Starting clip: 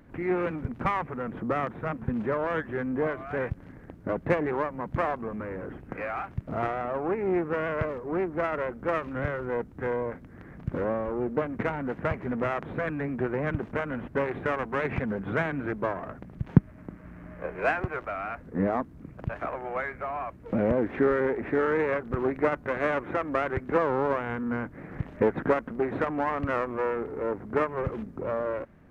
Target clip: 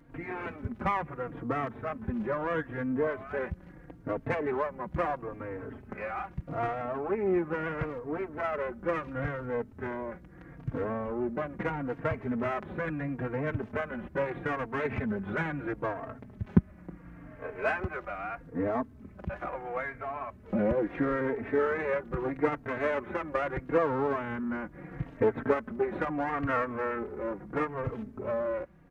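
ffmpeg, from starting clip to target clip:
-filter_complex "[0:a]asettb=1/sr,asplit=3[a][b][c];[a]atrim=end=26.324[d];[b]atrim=start=26.32:end=26.99,asetpts=PTS-STARTPTS,afade=t=in:d=0.004:c=qsin,afade=t=out:st=0.666:d=0.004:c=qsin,equalizer=f=1.6k:w=1.4:g=5.5[e];[c]atrim=start=26.986[f];[d][e]acrossfade=d=0.004:c1=hsin:c2=qsin[g];[g][f]acrossfade=d=0.004:c1=qsin:c2=hsin,asplit=2[h][i];[i]adelay=3.8,afreqshift=-0.76[j];[h][j]amix=inputs=2:normalize=1"

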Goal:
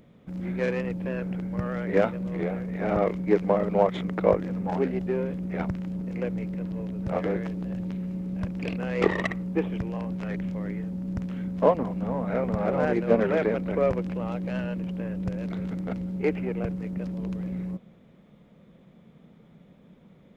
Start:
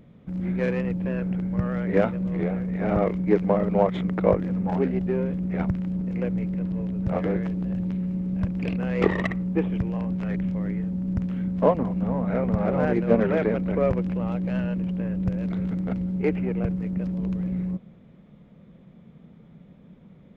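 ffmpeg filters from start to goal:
-af "bass=f=250:g=-6,treble=f=4k:g=5"

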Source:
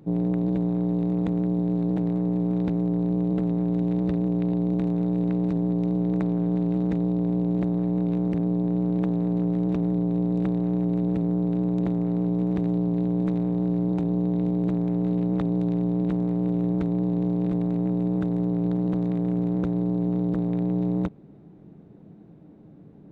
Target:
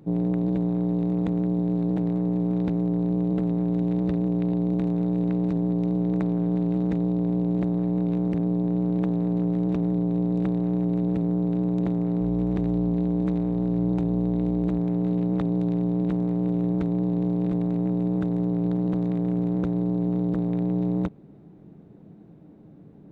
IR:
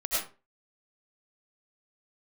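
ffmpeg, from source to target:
-filter_complex "[0:a]asettb=1/sr,asplit=3[a][b][c];[a]atrim=end=12.214[d];[b]atrim=start=12.21:end=14.79,asetpts=PTS-STARTPTS,afade=t=in:d=0.004:c=qsin,afade=t=out:st=2.576:d=0.004:c=qsin,aeval=exprs='val(0)+0.0178*(sin(2*PI*60*n/s)+sin(2*PI*2*60*n/s)/2+sin(2*PI*3*60*n/s)/3+sin(2*PI*4*60*n/s)/4+sin(2*PI*5*60*n/s)/5)':c=same[e];[c]atrim=start=14.786[f];[d][e]acrossfade=d=0.004:c1=hsin:c2=qsin[g];[g][f]acrossfade=d=0.004:c1=qsin:c2=hsin"

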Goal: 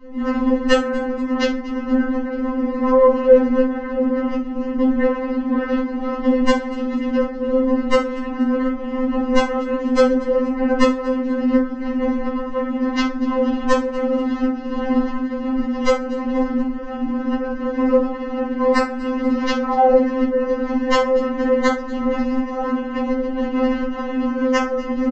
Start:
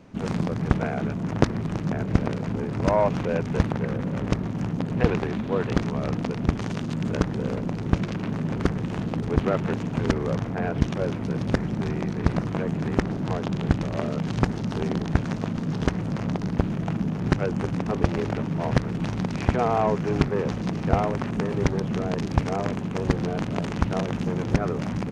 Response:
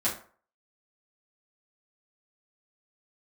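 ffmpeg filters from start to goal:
-filter_complex "[0:a]aemphasis=mode=reproduction:type=bsi,asplit=2[a][b];[b]aeval=exprs='clip(val(0),-1,0.668)':c=same,volume=-6dB[c];[a][c]amix=inputs=2:normalize=0,alimiter=limit=-3.5dB:level=0:latency=1:release=482,asplit=3[d][e][f];[e]asetrate=33038,aresample=44100,atempo=1.33484,volume=-17dB[g];[f]asetrate=35002,aresample=44100,atempo=1.25992,volume=-12dB[h];[d][g][h]amix=inputs=3:normalize=0,aresample=16000,aeval=exprs='(mod(1.41*val(0)+1,2)-1)/1.41':c=same,aresample=44100,highshelf=f=4k:g=-8.5,asplit=5[i][j][k][l][m];[j]adelay=240,afreqshift=-47,volume=-19dB[n];[k]adelay=480,afreqshift=-94,volume=-24.5dB[o];[l]adelay=720,afreqshift=-141,volume=-30dB[p];[m]adelay=960,afreqshift=-188,volume=-35.5dB[q];[i][n][o][p][q]amix=inputs=5:normalize=0[r];[1:a]atrim=start_sample=2205,asetrate=41454,aresample=44100[s];[r][s]afir=irnorm=-1:irlink=0,afftfilt=real='re*3.46*eq(mod(b,12),0)':imag='im*3.46*eq(mod(b,12),0)':win_size=2048:overlap=0.75,volume=-1.5dB"

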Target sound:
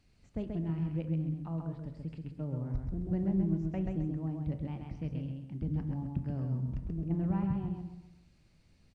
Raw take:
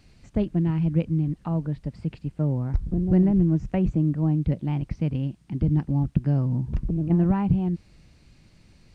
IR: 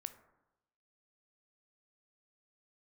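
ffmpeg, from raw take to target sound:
-filter_complex "[0:a]aecho=1:1:132|264|396|528:0.631|0.196|0.0606|0.0188[a];[1:a]atrim=start_sample=2205[b];[a][b]afir=irnorm=-1:irlink=0,volume=-8.5dB"

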